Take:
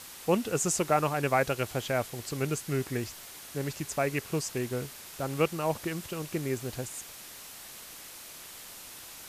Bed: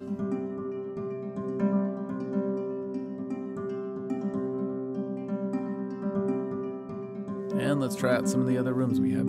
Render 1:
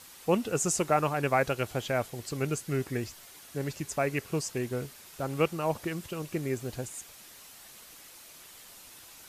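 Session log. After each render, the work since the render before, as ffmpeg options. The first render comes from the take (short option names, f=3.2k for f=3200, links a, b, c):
-af "afftdn=nr=6:nf=-47"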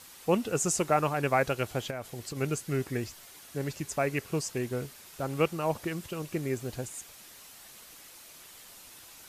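-filter_complex "[0:a]asettb=1/sr,asplit=3[a][b][c];[a]atrim=end=1.904[d];[b]atrim=start=1.9:end=2.37,asetpts=PTS-STARTPTS,afade=t=in:d=0.004:c=qsin,afade=t=out:st=0.466:d=0.004:c=qsin,acompressor=threshold=-33dB:ratio=6:attack=3.2:release=140:knee=1:detection=peak[e];[c]atrim=start=2.366[f];[d][e]acrossfade=d=0.004:c1=hsin:c2=qsin[g];[g][f]acrossfade=d=0.004:c1=qsin:c2=hsin"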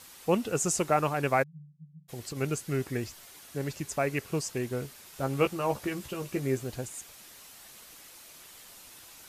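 -filter_complex "[0:a]asplit=3[a][b][c];[a]afade=t=out:st=1.42:d=0.02[d];[b]asuperpass=centerf=160:order=20:qfactor=5.4,afade=t=in:st=1.42:d=0.02,afade=t=out:st=2.08:d=0.02[e];[c]afade=t=in:st=2.08:d=0.02[f];[d][e][f]amix=inputs=3:normalize=0,asettb=1/sr,asplit=3[g][h][i];[g]atrim=end=5.144[j];[h]atrim=start=5.14:end=6.64,asetpts=PTS-STARTPTS,afade=t=in:d=0.004:c=qsin,afade=t=out:st=1.496:d=0.004:c=qsin,asplit=2[k][l];[l]adelay=15,volume=-6dB[m];[k][m]amix=inputs=2:normalize=0,atrim=end_sample=66150[n];[i]atrim=start=6.636[o];[j][n]acrossfade=d=0.004:c1=hsin:c2=qsin[p];[p][o]acrossfade=d=0.004:c1=qsin:c2=hsin"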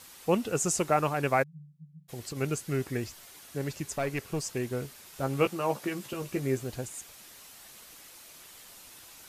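-filter_complex "[0:a]asplit=3[a][b][c];[a]afade=t=out:st=3.95:d=0.02[d];[b]aeval=exprs='(tanh(14.1*val(0)+0.25)-tanh(0.25))/14.1':c=same,afade=t=in:st=3.95:d=0.02,afade=t=out:st=4.44:d=0.02[e];[c]afade=t=in:st=4.44:d=0.02[f];[d][e][f]amix=inputs=3:normalize=0,asettb=1/sr,asplit=3[g][h][i];[g]atrim=end=5.474[j];[h]atrim=start=5.47:end=6.13,asetpts=PTS-STARTPTS,afade=t=in:d=0.004:c=qsin,afade=t=out:st=0.656:d=0.004:c=qsin,highpass=f=140:w=0.5412,highpass=f=140:w=1.3066[k];[i]atrim=start=6.126[l];[j][k]acrossfade=d=0.004:c1=hsin:c2=qsin[m];[m][l]acrossfade=d=0.004:c1=qsin:c2=hsin"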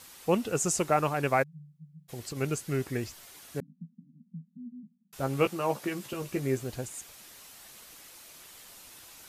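-filter_complex "[0:a]asettb=1/sr,asplit=3[a][b][c];[a]atrim=end=3.604[d];[b]atrim=start=3.6:end=5.13,asetpts=PTS-STARTPTS,afade=t=in:d=0.004:c=qsin,afade=t=out:st=1.526:d=0.004:c=qsin,asuperpass=centerf=200:order=12:qfactor=2.4[e];[c]atrim=start=5.126[f];[d][e]acrossfade=d=0.004:c1=hsin:c2=qsin[g];[g][f]acrossfade=d=0.004:c1=qsin:c2=hsin"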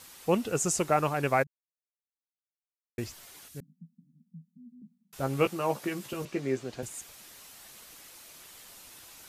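-filter_complex "[0:a]asettb=1/sr,asplit=3[a][b][c];[a]atrim=end=3.484[d];[b]atrim=start=3.48:end=4.82,asetpts=PTS-STARTPTS,afade=t=in:d=0.004:c=qsin,afade=t=out:st=1.336:d=0.004:c=qsin,equalizer=f=780:w=0.32:g=-14.5[e];[c]atrim=start=4.816[f];[d][e]acrossfade=d=0.004:c1=hsin:c2=qsin[g];[g][f]acrossfade=d=0.004:c1=qsin:c2=hsin,asettb=1/sr,asplit=3[h][i][j];[h]atrim=end=6.254[k];[i]atrim=start=6.25:end=6.83,asetpts=PTS-STARTPTS,afade=t=in:d=0.004:c=qsin,afade=t=out:st=0.576:d=0.004:c=qsin,acrossover=split=160 6900:gain=0.224 1 0.141[l][m][n];[l][m][n]amix=inputs=3:normalize=0[o];[j]atrim=start=6.826[p];[k][o]acrossfade=d=0.004:c1=hsin:c2=qsin[q];[q][p]acrossfade=d=0.004:c1=qsin:c2=hsin,asplit=3[r][s][t];[r]atrim=end=1.47,asetpts=PTS-STARTPTS,afade=t=out:st=1.466:d=0.004:c=hsin[u];[s]atrim=start=1.47:end=2.98,asetpts=PTS-STARTPTS,volume=0[v];[t]atrim=start=2.98,asetpts=PTS-STARTPTS,afade=t=in:d=0.004:c=hsin[w];[u][v][w]concat=n=3:v=0:a=1"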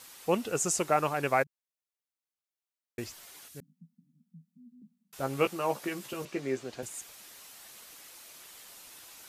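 -af "lowshelf=f=200:g=-8.5"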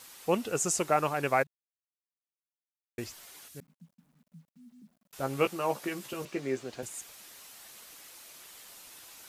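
-af "acrusher=bits=11:mix=0:aa=0.000001"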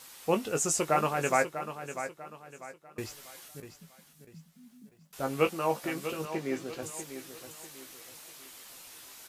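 -filter_complex "[0:a]asplit=2[a][b];[b]adelay=19,volume=-8dB[c];[a][c]amix=inputs=2:normalize=0,asplit=2[d][e];[e]aecho=0:1:645|1290|1935|2580:0.299|0.107|0.0387|0.0139[f];[d][f]amix=inputs=2:normalize=0"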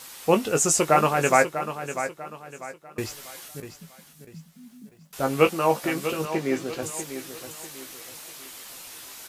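-af "volume=7.5dB"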